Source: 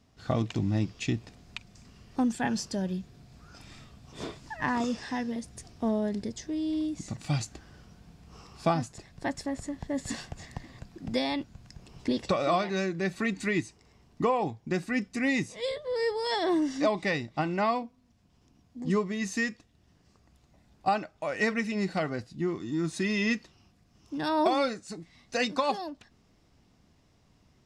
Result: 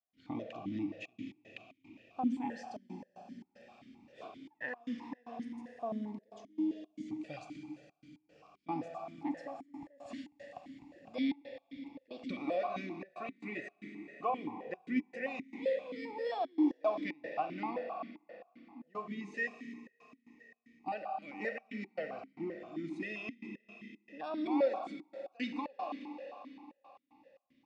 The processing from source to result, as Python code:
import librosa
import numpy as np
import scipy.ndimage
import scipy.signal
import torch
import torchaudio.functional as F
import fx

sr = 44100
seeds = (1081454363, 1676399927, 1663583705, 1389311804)

y = fx.rev_schroeder(x, sr, rt60_s=3.9, comb_ms=30, drr_db=5.0)
y = fx.step_gate(y, sr, bpm=114, pattern='.xxxxxxx.x.xx', floor_db=-24.0, edge_ms=4.5)
y = fx.notch(y, sr, hz=390.0, q=12.0)
y = fx.vowel_held(y, sr, hz=7.6)
y = y * 10.0 ** (1.5 / 20.0)